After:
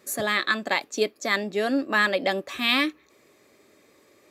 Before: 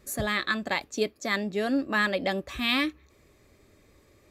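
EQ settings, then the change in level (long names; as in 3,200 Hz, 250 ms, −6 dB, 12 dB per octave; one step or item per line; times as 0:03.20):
high-pass filter 260 Hz 12 dB per octave
+4.0 dB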